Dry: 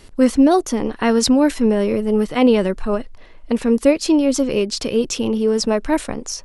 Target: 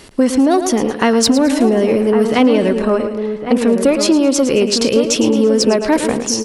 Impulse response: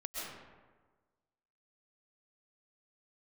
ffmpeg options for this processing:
-filter_complex "[0:a]acontrast=51,asplit=2[a][b];[b]aecho=0:1:110|220|330|440:0.282|0.107|0.0407|0.0155[c];[a][c]amix=inputs=2:normalize=0,acompressor=threshold=-11dB:ratio=6,highpass=f=150:p=1,asplit=2[d][e];[e]adelay=1108,volume=-7dB,highshelf=f=4k:g=-24.9[f];[d][f]amix=inputs=2:normalize=0,volume=2.5dB"

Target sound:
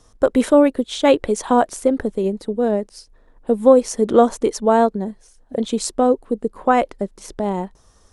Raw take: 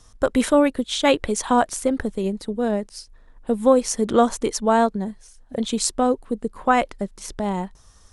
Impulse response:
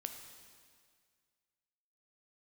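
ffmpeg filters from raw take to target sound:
-af "equalizer=f=430:w=0.6:g=8.5,volume=-3dB"

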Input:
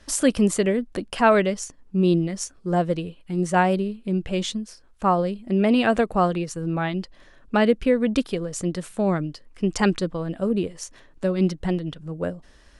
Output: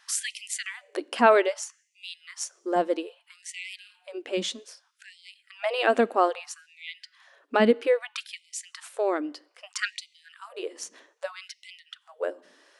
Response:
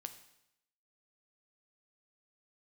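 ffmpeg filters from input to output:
-filter_complex "[0:a]asplit=2[a][b];[1:a]atrim=start_sample=2205,lowpass=6.7k[c];[b][c]afir=irnorm=-1:irlink=0,volume=-8.5dB[d];[a][d]amix=inputs=2:normalize=0,afftfilt=real='re*gte(b*sr/1024,210*pow(2000/210,0.5+0.5*sin(2*PI*0.62*pts/sr)))':imag='im*gte(b*sr/1024,210*pow(2000/210,0.5+0.5*sin(2*PI*0.62*pts/sr)))':win_size=1024:overlap=0.75,volume=-2.5dB"

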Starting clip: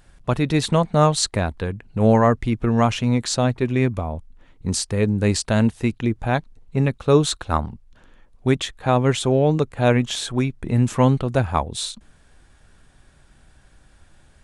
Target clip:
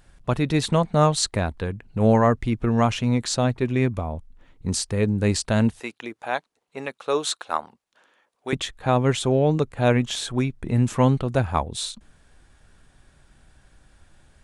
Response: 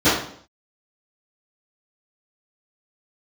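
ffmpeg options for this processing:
-filter_complex "[0:a]asettb=1/sr,asplit=3[a][b][c];[a]atrim=end=5.804[d];[b]atrim=start=5.8:end=8.53,asetpts=PTS-STARTPTS,afade=t=in:d=0.004:c=qsin,afade=t=out:st=2.726:d=0.004:c=qsin,highpass=540[e];[c]atrim=start=8.526[f];[d][e]acrossfade=d=0.004:c1=hsin:c2=qsin[g];[g][f]acrossfade=d=0.004:c1=qsin:c2=hsin,volume=-2dB"

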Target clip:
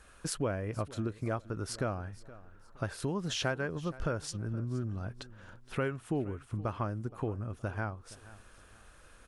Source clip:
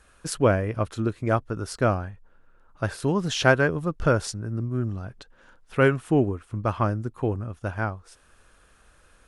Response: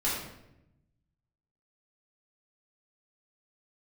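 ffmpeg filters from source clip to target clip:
-filter_complex "[0:a]acompressor=threshold=-34dB:ratio=3,asplit=2[a][b];[b]aecho=0:1:470|940|1410:0.112|0.0359|0.0115[c];[a][c]amix=inputs=2:normalize=0"

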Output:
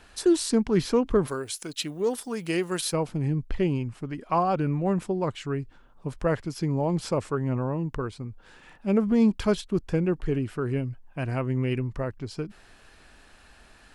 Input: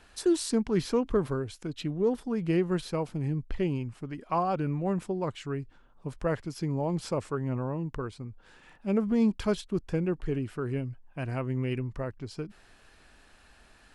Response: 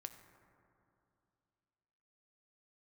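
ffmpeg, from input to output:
-filter_complex "[0:a]asplit=3[a][b][c];[a]afade=t=out:st=1.27:d=0.02[d];[b]aemphasis=mode=production:type=riaa,afade=t=in:st=1.27:d=0.02,afade=t=out:st=2.92:d=0.02[e];[c]afade=t=in:st=2.92:d=0.02[f];[d][e][f]amix=inputs=3:normalize=0,volume=4dB"

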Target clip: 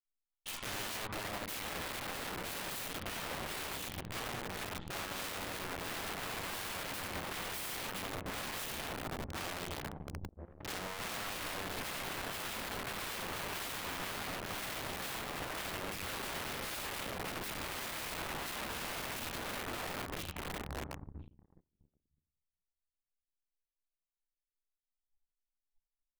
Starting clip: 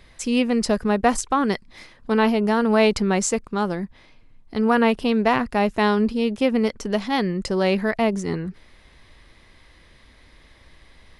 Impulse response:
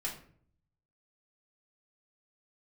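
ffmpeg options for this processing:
-filter_complex "[0:a]agate=range=-33dB:threshold=-39dB:ratio=3:detection=peak[a];[1:a]atrim=start_sample=2205[b];[a][b]afir=irnorm=-1:irlink=0,acrossover=split=110|2900[c][d][e];[c]acompressor=threshold=-44dB:ratio=4[f];[d]acompressor=threshold=-27dB:ratio=4[g];[e]acompressor=threshold=-35dB:ratio=4[h];[f][g][h]amix=inputs=3:normalize=0,equalizer=f=63:t=o:w=2:g=-6.5,aecho=1:1:438|876|1314:0.631|0.139|0.0305,asetrate=18846,aresample=44100,aeval=exprs='(mod(26.6*val(0)+1,2)-1)/26.6':c=same,anlmdn=0.0631,bandreject=f=50:t=h:w=6,bandreject=f=100:t=h:w=6,bandreject=f=150:t=h:w=6,bandreject=f=200:t=h:w=6,bandreject=f=250:t=h:w=6,bandreject=f=300:t=h:w=6,bandreject=f=350:t=h:w=6,bandreject=f=400:t=h:w=6,bandreject=f=450:t=h:w=6,bandreject=f=500:t=h:w=6,aeval=exprs='0.0596*(cos(1*acos(clip(val(0)/0.0596,-1,1)))-cos(1*PI/2))+0.00106*(cos(3*acos(clip(val(0)/0.0596,-1,1)))-cos(3*PI/2))+0.00841*(cos(7*acos(clip(val(0)/0.0596,-1,1)))-cos(7*PI/2))':c=same,alimiter=level_in=5.5dB:limit=-24dB:level=0:latency=1:release=46,volume=-5.5dB,adynamicequalizer=threshold=0.00355:dfrequency=6200:dqfactor=1:tfrequency=6200:tqfactor=1:attack=5:release=100:ratio=0.375:range=2.5:mode=cutabove:tftype=bell,volume=-3.5dB"

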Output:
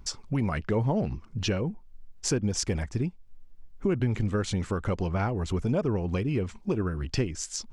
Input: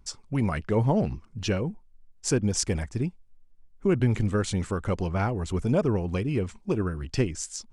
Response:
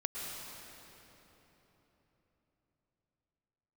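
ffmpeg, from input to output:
-af "equalizer=f=9.1k:t=o:w=0.6:g=-7.5,acompressor=threshold=-40dB:ratio=2,volume=8dB"

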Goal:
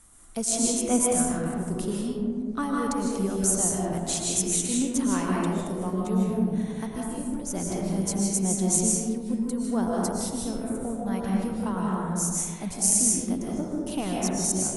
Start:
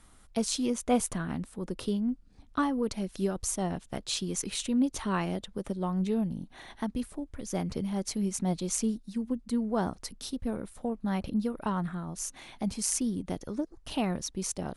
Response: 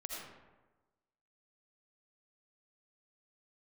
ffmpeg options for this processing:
-filter_complex "[0:a]highshelf=f=5.7k:t=q:w=1.5:g=8.5[a];[1:a]atrim=start_sample=2205,asetrate=23373,aresample=44100[b];[a][b]afir=irnorm=-1:irlink=0"

